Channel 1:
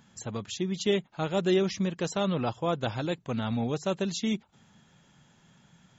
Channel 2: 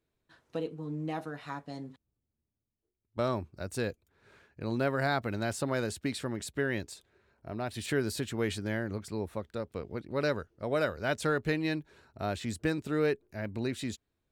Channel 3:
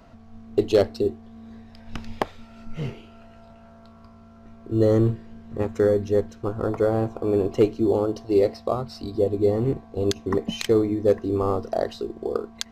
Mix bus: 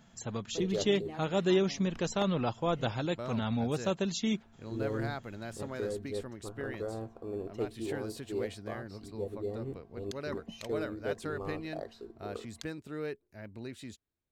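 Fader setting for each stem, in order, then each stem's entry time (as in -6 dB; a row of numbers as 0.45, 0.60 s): -2.0, -9.5, -16.5 dB; 0.00, 0.00, 0.00 s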